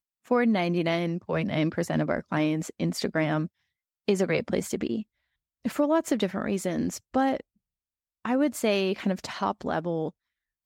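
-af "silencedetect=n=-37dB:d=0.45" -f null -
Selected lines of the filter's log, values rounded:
silence_start: 3.46
silence_end: 4.08 | silence_duration: 0.62
silence_start: 5.02
silence_end: 5.65 | silence_duration: 0.63
silence_start: 7.40
silence_end: 8.25 | silence_duration: 0.85
silence_start: 10.09
silence_end: 10.66 | silence_duration: 0.56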